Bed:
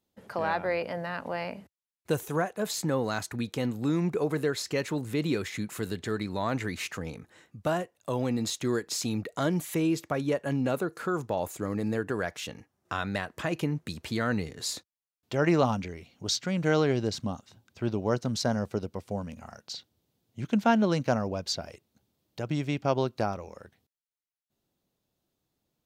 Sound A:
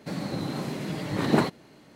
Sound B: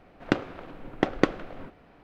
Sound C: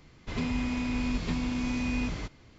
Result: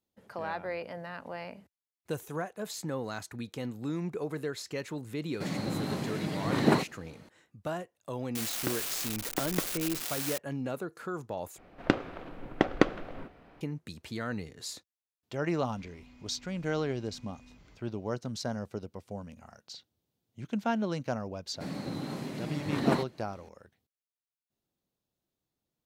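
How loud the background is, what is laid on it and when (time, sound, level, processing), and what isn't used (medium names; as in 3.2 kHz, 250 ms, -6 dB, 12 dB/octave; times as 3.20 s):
bed -7 dB
5.34 s: add A -2 dB
8.35 s: add B -11.5 dB + zero-crossing glitches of -9.5 dBFS
11.58 s: replace with B -1 dB
15.49 s: add C -17 dB + compression 2.5:1, threshold -39 dBFS
21.54 s: add A -6 dB + peaking EQ 260 Hz +3.5 dB 0.27 oct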